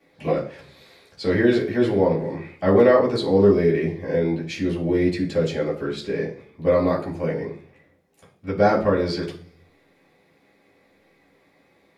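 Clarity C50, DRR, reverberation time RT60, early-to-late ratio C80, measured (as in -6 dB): 10.5 dB, -12.5 dB, 0.45 s, 15.0 dB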